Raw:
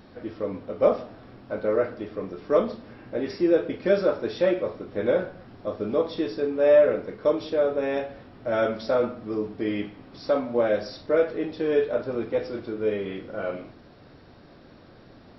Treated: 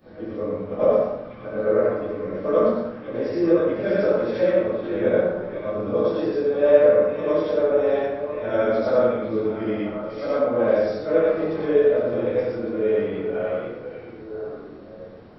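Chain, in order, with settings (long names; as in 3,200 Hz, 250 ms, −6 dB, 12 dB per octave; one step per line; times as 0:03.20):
every overlapping window played backwards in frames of 239 ms
high-shelf EQ 3,500 Hz −9 dB
on a send: echo through a band-pass that steps 496 ms, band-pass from 2,600 Hz, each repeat −1.4 octaves, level −4.5 dB
on the sum: dense smooth reverb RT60 0.82 s, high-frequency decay 0.55×, DRR −5 dB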